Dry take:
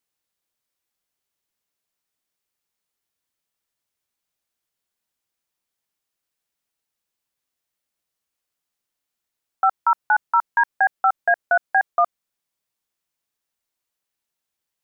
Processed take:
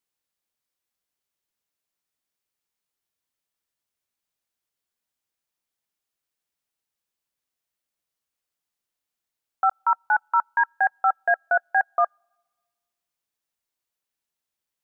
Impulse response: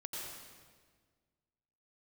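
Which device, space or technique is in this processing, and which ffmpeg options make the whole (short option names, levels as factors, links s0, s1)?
keyed gated reverb: -filter_complex "[0:a]asplit=3[s0][s1][s2];[1:a]atrim=start_sample=2205[s3];[s1][s3]afir=irnorm=-1:irlink=0[s4];[s2]apad=whole_len=654154[s5];[s4][s5]sidechaingate=range=0.02:threshold=0.178:ratio=16:detection=peak,volume=0.398[s6];[s0][s6]amix=inputs=2:normalize=0,volume=0.668"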